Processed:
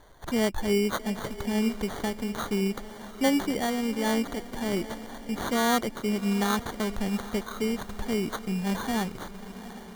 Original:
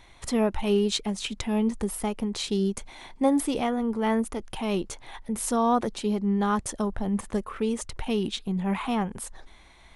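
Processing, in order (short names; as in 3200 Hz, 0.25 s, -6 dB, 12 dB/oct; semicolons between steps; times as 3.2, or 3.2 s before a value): sample-and-hold 17×; diffused feedback echo 0.771 s, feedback 55%, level -14 dB; gain -1.5 dB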